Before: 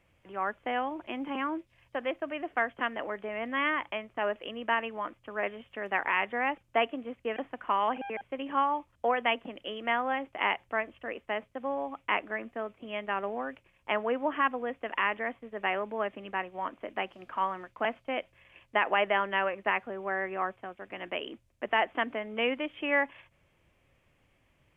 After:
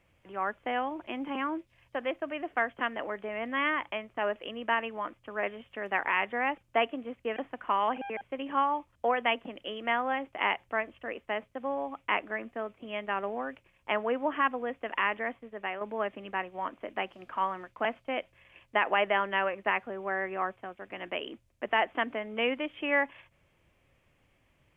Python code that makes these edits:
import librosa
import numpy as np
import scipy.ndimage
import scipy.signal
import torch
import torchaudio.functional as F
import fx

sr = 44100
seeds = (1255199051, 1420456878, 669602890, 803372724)

y = fx.edit(x, sr, fx.fade_out_to(start_s=15.32, length_s=0.49, floor_db=-8.0), tone=tone)